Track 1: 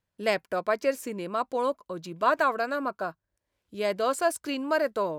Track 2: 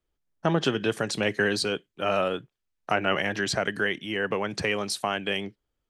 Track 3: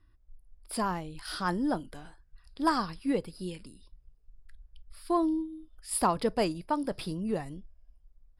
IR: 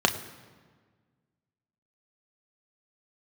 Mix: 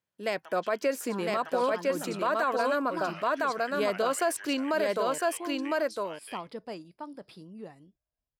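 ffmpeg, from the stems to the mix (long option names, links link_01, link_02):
-filter_complex "[0:a]dynaudnorm=framelen=180:gausssize=5:maxgain=6.5dB,volume=-4.5dB,asplit=3[link_01][link_02][link_03];[link_02]volume=-3dB[link_04];[1:a]highpass=1000,tremolo=f=8.8:d=0.37,volume=-8.5dB,asplit=2[link_05][link_06];[link_06]volume=-6dB[link_07];[2:a]equalizer=frequency=10000:width=1.5:gain=-6.5,adelay=300,volume=-11.5dB[link_08];[link_03]apad=whole_len=259838[link_09];[link_05][link_09]sidechaincompress=threshold=-34dB:ratio=8:attack=29:release=1090[link_10];[link_04][link_07]amix=inputs=2:normalize=0,aecho=0:1:1006:1[link_11];[link_01][link_10][link_08][link_11]amix=inputs=4:normalize=0,highpass=150,alimiter=limit=-18dB:level=0:latency=1:release=39"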